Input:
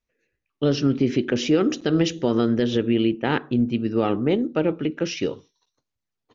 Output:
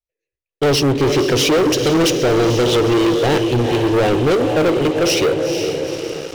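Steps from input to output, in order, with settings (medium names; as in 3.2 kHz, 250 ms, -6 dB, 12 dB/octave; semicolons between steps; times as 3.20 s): static phaser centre 530 Hz, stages 4; echo that smears into a reverb 467 ms, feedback 53%, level -10 dB; waveshaping leveller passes 5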